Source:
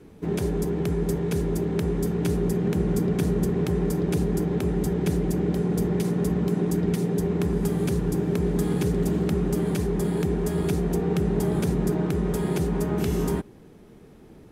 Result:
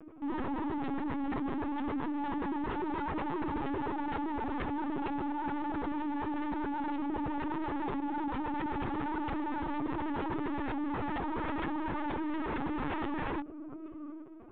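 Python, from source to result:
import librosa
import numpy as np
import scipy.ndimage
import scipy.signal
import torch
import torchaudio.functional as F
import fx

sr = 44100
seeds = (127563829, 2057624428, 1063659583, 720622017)

p1 = fx.cabinet(x, sr, low_hz=240.0, low_slope=12, high_hz=2300.0, hz=(290.0, 460.0, 710.0, 1200.0, 1800.0), db=(6, -6, 6, 9, -8))
p2 = fx.pitch_keep_formants(p1, sr, semitones=8.5)
p3 = p2 + fx.echo_feedback(p2, sr, ms=819, feedback_pct=21, wet_db=-17.0, dry=0)
p4 = 10.0 ** (-29.5 / 20.0) * (np.abs((p3 / 10.0 ** (-29.5 / 20.0) + 3.0) % 4.0 - 2.0) - 1.0)
y = fx.lpc_vocoder(p4, sr, seeds[0], excitation='pitch_kept', order=16)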